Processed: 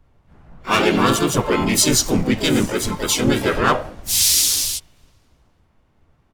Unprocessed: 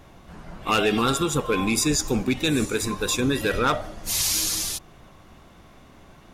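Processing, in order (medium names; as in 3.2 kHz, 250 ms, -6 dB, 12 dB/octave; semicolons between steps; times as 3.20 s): filtered feedback delay 879 ms, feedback 28%, low-pass 1.3 kHz, level -23 dB; harmony voices -3 st -1 dB, +4 st -5 dB, +12 st -11 dB; in parallel at -9.5 dB: hard clipper -19.5 dBFS, distortion -9 dB; on the sum: three bands expanded up and down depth 70%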